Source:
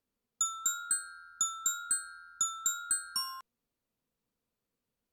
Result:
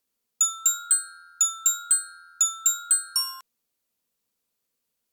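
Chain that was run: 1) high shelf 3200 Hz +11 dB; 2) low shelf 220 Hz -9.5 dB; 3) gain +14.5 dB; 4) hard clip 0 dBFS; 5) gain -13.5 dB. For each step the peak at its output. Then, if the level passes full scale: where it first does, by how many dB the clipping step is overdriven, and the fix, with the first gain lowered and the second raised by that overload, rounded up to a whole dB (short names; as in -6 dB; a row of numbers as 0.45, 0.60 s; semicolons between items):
-10.5, -10.5, +4.0, 0.0, -13.5 dBFS; step 3, 4.0 dB; step 3 +10.5 dB, step 5 -9.5 dB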